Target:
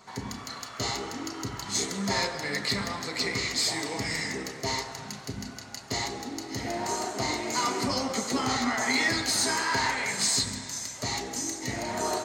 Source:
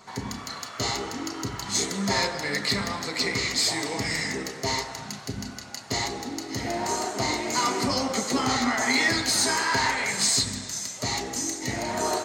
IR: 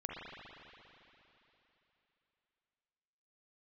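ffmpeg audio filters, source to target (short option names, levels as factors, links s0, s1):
-filter_complex "[0:a]asplit=2[s0][s1];[1:a]atrim=start_sample=2205,asetrate=30870,aresample=44100,adelay=138[s2];[s1][s2]afir=irnorm=-1:irlink=0,volume=0.106[s3];[s0][s3]amix=inputs=2:normalize=0,volume=0.708"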